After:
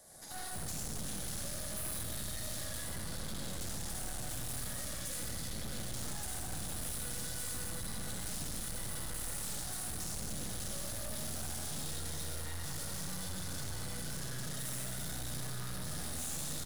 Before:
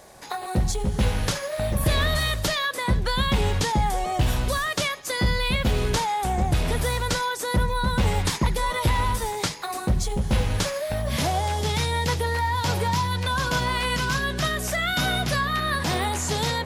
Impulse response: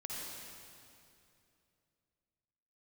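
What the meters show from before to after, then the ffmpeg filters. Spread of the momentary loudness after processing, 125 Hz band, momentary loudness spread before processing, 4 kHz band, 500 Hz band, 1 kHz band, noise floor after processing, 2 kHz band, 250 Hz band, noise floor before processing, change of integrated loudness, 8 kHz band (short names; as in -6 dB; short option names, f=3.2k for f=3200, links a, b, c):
2 LU, -18.5 dB, 3 LU, -16.0 dB, -21.0 dB, -24.5 dB, -41 dBFS, -21.0 dB, -16.5 dB, -33 dBFS, -15.0 dB, -5.5 dB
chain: -filter_complex "[0:a]aecho=1:1:138:0.251,acrossover=split=120|1400[a][b][c];[a]acompressor=threshold=-30dB:ratio=4[d];[b]acompressor=threshold=-32dB:ratio=4[e];[c]acompressor=threshold=-34dB:ratio=4[f];[d][e][f]amix=inputs=3:normalize=0,lowshelf=f=130:g=-6[g];[1:a]atrim=start_sample=2205,asetrate=48510,aresample=44100[h];[g][h]afir=irnorm=-1:irlink=0,acrossover=split=600|5200[i][j][k];[j]alimiter=level_in=7dB:limit=-24dB:level=0:latency=1,volume=-7dB[l];[i][l][k]amix=inputs=3:normalize=0,aeval=exprs='0.112*(cos(1*acos(clip(val(0)/0.112,-1,1)))-cos(1*PI/2))+0.0316*(cos(6*acos(clip(val(0)/0.112,-1,1)))-cos(6*PI/2))':c=same,equalizer=f=400:t=o:w=0.67:g=-8,equalizer=f=1k:t=o:w=0.67:g=-10,equalizer=f=2.5k:t=o:w=0.67:g=-11,equalizer=f=10k:t=o:w=0.67:g=9,asoftclip=type=hard:threshold=-32dB,volume=-3dB"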